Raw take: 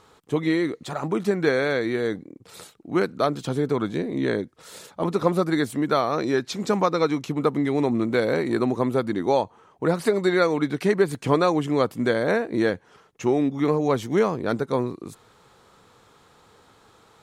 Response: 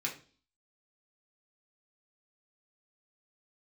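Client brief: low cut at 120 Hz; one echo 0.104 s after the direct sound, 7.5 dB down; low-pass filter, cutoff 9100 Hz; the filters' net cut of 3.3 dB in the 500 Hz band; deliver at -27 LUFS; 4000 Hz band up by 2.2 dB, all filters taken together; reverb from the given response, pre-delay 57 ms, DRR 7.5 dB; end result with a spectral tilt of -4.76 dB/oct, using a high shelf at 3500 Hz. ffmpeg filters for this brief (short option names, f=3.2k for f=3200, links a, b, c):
-filter_complex "[0:a]highpass=120,lowpass=9.1k,equalizer=f=500:t=o:g=-4,highshelf=f=3.5k:g=-4,equalizer=f=4k:t=o:g=5,aecho=1:1:104:0.422,asplit=2[a][b];[1:a]atrim=start_sample=2205,adelay=57[c];[b][c]afir=irnorm=-1:irlink=0,volume=-11dB[d];[a][d]amix=inputs=2:normalize=0,volume=-2.5dB"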